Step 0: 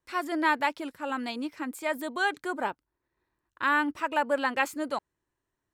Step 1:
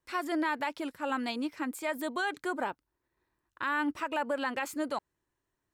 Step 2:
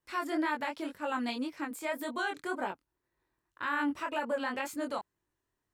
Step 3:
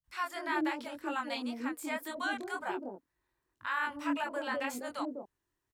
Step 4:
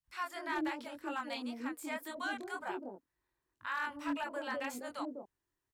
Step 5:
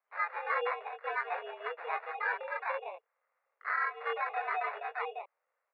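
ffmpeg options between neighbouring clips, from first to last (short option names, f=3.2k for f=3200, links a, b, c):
-af "alimiter=limit=-21.5dB:level=0:latency=1:release=88"
-af "flanger=delay=20:depth=5.3:speed=1.9,volume=1.5dB"
-filter_complex "[0:a]acrossover=split=170|580[a][b][c];[c]adelay=40[d];[b]adelay=240[e];[a][e][d]amix=inputs=3:normalize=0"
-af "asoftclip=type=hard:threshold=-25.5dB,volume=-3.5dB"
-af "acrusher=samples=15:mix=1:aa=0.000001,highpass=f=350:t=q:w=0.5412,highpass=f=350:t=q:w=1.307,lowpass=f=2.6k:t=q:w=0.5176,lowpass=f=2.6k:t=q:w=0.7071,lowpass=f=2.6k:t=q:w=1.932,afreqshift=170,volume=6dB"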